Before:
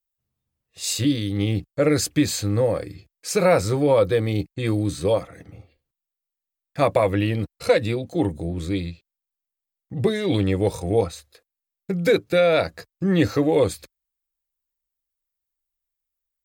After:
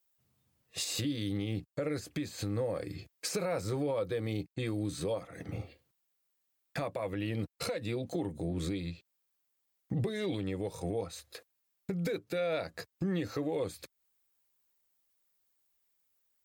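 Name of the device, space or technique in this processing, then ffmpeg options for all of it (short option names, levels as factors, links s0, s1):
podcast mastering chain: -af "highpass=97,deesser=0.65,acompressor=threshold=0.0112:ratio=2.5,alimiter=level_in=2.51:limit=0.0631:level=0:latency=1:release=412,volume=0.398,volume=2.51" -ar 44100 -c:a libmp3lame -b:a 96k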